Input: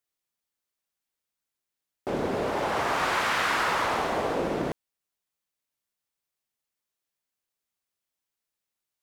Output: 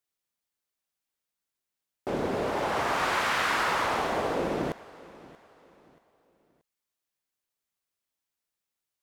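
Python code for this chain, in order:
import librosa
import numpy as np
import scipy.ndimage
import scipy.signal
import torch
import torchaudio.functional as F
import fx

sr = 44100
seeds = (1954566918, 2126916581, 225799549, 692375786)

y = fx.echo_feedback(x, sr, ms=631, feedback_pct=35, wet_db=-20.5)
y = y * 10.0 ** (-1.0 / 20.0)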